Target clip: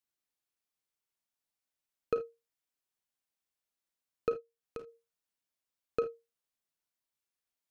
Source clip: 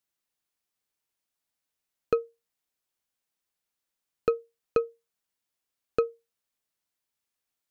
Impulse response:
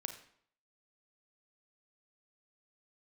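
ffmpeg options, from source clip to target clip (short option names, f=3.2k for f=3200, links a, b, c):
-filter_complex "[0:a]asplit=3[a][b][c];[a]afade=t=out:st=4.32:d=0.02[d];[b]acompressor=threshold=-45dB:ratio=2,afade=t=in:st=4.32:d=0.02,afade=t=out:st=4.86:d=0.02[e];[c]afade=t=in:st=4.86:d=0.02[f];[d][e][f]amix=inputs=3:normalize=0[g];[1:a]atrim=start_sample=2205,afade=t=out:st=0.13:d=0.01,atrim=end_sample=6174[h];[g][h]afir=irnorm=-1:irlink=0,volume=-4dB"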